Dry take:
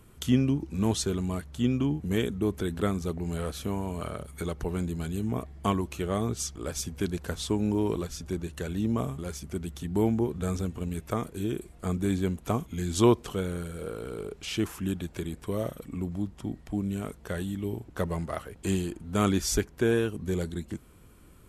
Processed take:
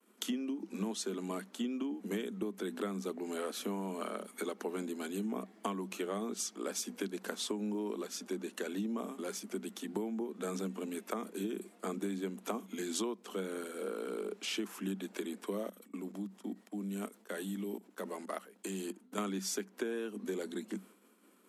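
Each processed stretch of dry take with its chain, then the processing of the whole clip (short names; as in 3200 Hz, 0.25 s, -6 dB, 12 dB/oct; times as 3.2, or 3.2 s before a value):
15.68–19.18 high shelf 6300 Hz +6.5 dB + level quantiser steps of 18 dB
whole clip: expander -48 dBFS; Chebyshev high-pass 190 Hz, order 10; compressor 16:1, threshold -33 dBFS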